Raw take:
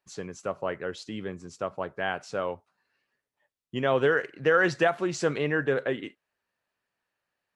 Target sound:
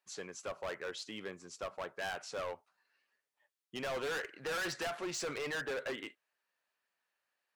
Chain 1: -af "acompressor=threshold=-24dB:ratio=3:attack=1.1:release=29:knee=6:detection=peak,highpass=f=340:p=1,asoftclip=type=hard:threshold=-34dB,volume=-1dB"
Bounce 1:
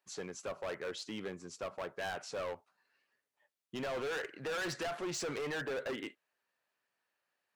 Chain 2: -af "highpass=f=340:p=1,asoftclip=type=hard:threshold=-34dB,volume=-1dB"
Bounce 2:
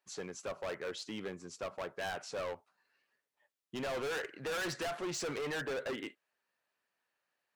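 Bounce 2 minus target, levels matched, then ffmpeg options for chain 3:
250 Hz band +2.5 dB
-af "highpass=f=760:p=1,asoftclip=type=hard:threshold=-34dB,volume=-1dB"

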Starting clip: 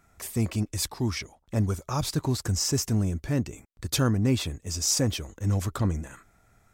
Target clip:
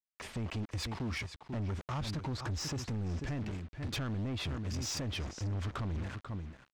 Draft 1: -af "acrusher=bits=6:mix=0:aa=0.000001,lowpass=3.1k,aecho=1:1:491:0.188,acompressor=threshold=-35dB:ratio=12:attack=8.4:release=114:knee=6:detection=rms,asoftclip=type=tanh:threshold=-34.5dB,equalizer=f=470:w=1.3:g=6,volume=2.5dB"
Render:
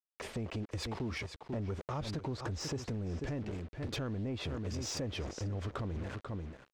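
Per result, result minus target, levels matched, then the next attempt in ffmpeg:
compressor: peak gain reduction +6.5 dB; 500 Hz band +5.5 dB
-af "acrusher=bits=6:mix=0:aa=0.000001,lowpass=3.1k,aecho=1:1:491:0.188,acompressor=threshold=-28dB:ratio=12:attack=8.4:release=114:knee=6:detection=rms,asoftclip=type=tanh:threshold=-34.5dB,equalizer=f=470:w=1.3:g=6,volume=2.5dB"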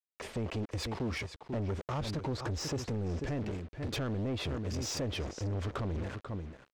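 500 Hz band +6.0 dB
-af "acrusher=bits=6:mix=0:aa=0.000001,lowpass=3.1k,aecho=1:1:491:0.188,acompressor=threshold=-28dB:ratio=12:attack=8.4:release=114:knee=6:detection=rms,asoftclip=type=tanh:threshold=-34.5dB,equalizer=f=470:w=1.3:g=-3,volume=2.5dB"

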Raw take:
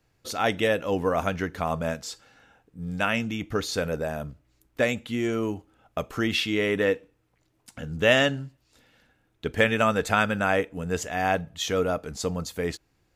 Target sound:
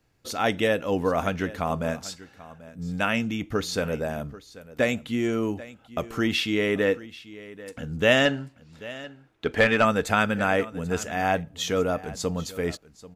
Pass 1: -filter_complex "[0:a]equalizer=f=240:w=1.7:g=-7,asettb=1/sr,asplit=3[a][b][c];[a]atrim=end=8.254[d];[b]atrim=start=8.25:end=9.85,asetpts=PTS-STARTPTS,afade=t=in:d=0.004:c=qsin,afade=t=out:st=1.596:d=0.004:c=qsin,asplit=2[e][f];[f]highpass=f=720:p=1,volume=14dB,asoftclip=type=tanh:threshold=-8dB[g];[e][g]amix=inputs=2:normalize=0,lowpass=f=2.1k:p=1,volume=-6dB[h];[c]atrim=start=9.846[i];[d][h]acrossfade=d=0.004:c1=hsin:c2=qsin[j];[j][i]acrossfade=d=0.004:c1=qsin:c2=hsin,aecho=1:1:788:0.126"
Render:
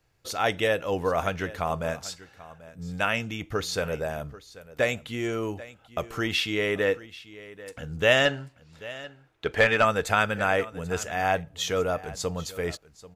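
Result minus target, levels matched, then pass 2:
250 Hz band -5.5 dB
-filter_complex "[0:a]equalizer=f=240:w=1.7:g=2.5,asettb=1/sr,asplit=3[a][b][c];[a]atrim=end=8.254[d];[b]atrim=start=8.25:end=9.85,asetpts=PTS-STARTPTS,afade=t=in:d=0.004:c=qsin,afade=t=out:st=1.596:d=0.004:c=qsin,asplit=2[e][f];[f]highpass=f=720:p=1,volume=14dB,asoftclip=type=tanh:threshold=-8dB[g];[e][g]amix=inputs=2:normalize=0,lowpass=f=2.1k:p=1,volume=-6dB[h];[c]atrim=start=9.846[i];[d][h]acrossfade=d=0.004:c1=hsin:c2=qsin[j];[j][i]acrossfade=d=0.004:c1=qsin:c2=hsin,aecho=1:1:788:0.126"

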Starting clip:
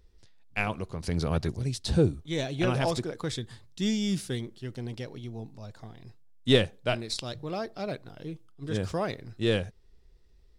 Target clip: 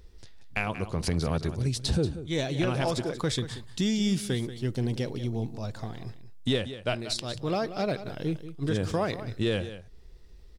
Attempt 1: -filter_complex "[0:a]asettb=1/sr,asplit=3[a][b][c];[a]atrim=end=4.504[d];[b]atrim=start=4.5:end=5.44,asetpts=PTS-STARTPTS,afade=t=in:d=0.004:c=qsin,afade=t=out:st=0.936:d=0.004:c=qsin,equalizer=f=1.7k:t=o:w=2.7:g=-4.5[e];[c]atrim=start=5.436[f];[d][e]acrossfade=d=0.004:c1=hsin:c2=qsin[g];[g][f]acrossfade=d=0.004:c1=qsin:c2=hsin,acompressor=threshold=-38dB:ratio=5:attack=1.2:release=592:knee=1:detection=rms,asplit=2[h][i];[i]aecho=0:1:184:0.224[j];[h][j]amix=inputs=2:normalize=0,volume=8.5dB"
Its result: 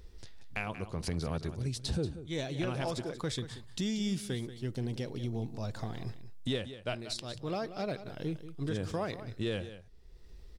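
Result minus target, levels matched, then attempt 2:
compressor: peak gain reduction +7 dB
-filter_complex "[0:a]asettb=1/sr,asplit=3[a][b][c];[a]atrim=end=4.504[d];[b]atrim=start=4.5:end=5.44,asetpts=PTS-STARTPTS,afade=t=in:d=0.004:c=qsin,afade=t=out:st=0.936:d=0.004:c=qsin,equalizer=f=1.7k:t=o:w=2.7:g=-4.5[e];[c]atrim=start=5.436[f];[d][e]acrossfade=d=0.004:c1=hsin:c2=qsin[g];[g][f]acrossfade=d=0.004:c1=qsin:c2=hsin,acompressor=threshold=-29.5dB:ratio=5:attack=1.2:release=592:knee=1:detection=rms,asplit=2[h][i];[i]aecho=0:1:184:0.224[j];[h][j]amix=inputs=2:normalize=0,volume=8.5dB"

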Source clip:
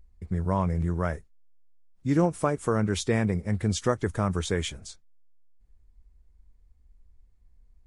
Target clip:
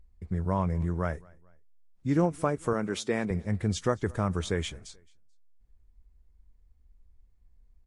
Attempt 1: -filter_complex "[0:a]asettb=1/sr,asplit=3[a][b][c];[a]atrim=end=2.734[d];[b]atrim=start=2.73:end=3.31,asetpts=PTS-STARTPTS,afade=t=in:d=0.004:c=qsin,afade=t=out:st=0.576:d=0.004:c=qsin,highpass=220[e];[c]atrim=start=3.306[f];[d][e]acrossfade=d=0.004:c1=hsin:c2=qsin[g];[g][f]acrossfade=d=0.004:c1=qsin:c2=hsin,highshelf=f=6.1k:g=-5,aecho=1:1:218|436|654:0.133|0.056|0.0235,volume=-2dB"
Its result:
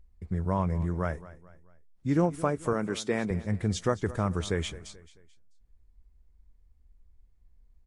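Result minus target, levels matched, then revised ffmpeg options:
echo-to-direct +8 dB
-filter_complex "[0:a]asettb=1/sr,asplit=3[a][b][c];[a]atrim=end=2.734[d];[b]atrim=start=2.73:end=3.31,asetpts=PTS-STARTPTS,afade=t=in:d=0.004:c=qsin,afade=t=out:st=0.576:d=0.004:c=qsin,highpass=220[e];[c]atrim=start=3.306[f];[d][e]acrossfade=d=0.004:c1=hsin:c2=qsin[g];[g][f]acrossfade=d=0.004:c1=qsin:c2=hsin,highshelf=f=6.1k:g=-5,aecho=1:1:218|436:0.0531|0.0223,volume=-2dB"

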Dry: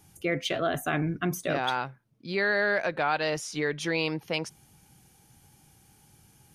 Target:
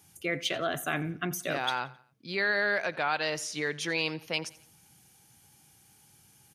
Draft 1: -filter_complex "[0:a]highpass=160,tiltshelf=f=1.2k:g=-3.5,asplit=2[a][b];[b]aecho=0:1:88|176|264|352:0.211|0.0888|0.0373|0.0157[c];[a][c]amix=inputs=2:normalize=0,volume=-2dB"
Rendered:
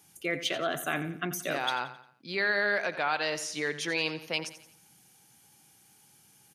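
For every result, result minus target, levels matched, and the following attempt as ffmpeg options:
echo-to-direct +7 dB; 125 Hz band -3.0 dB
-filter_complex "[0:a]highpass=160,tiltshelf=f=1.2k:g=-3.5,asplit=2[a][b];[b]aecho=0:1:88|176|264:0.0944|0.0397|0.0167[c];[a][c]amix=inputs=2:normalize=0,volume=-2dB"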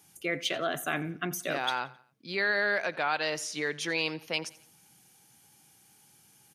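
125 Hz band -3.0 dB
-filter_complex "[0:a]highpass=72,tiltshelf=f=1.2k:g=-3.5,asplit=2[a][b];[b]aecho=0:1:88|176|264:0.0944|0.0397|0.0167[c];[a][c]amix=inputs=2:normalize=0,volume=-2dB"

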